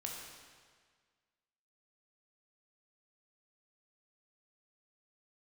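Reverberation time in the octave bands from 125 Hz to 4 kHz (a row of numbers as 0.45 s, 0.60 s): 1.7 s, 1.7 s, 1.7 s, 1.7 s, 1.7 s, 1.5 s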